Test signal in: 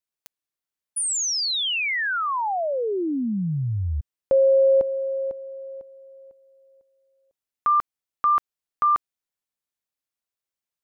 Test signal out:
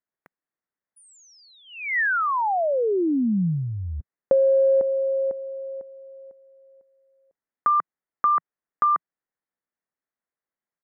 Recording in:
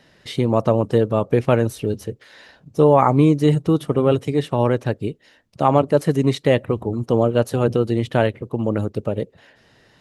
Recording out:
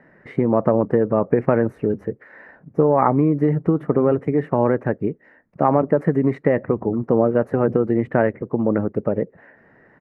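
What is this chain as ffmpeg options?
ffmpeg -i in.wav -af "acompressor=threshold=-25dB:ratio=6:attack=90:release=26:knee=6:detection=peak,firequalizer=gain_entry='entry(110,0);entry(170,8);entry(1100,6);entry(1900,8);entry(3300,-24)':delay=0.05:min_phase=1,volume=-4dB" out.wav

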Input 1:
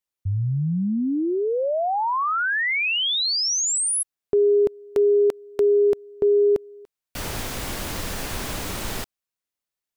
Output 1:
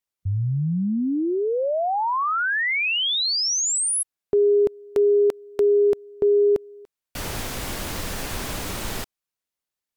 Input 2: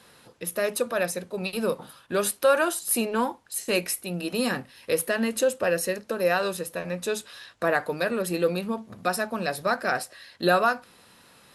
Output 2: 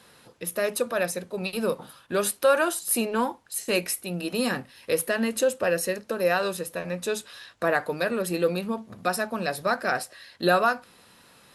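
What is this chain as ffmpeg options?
ffmpeg -i in.wav -ar 48000 -c:a aac -b:a 192k out.aac

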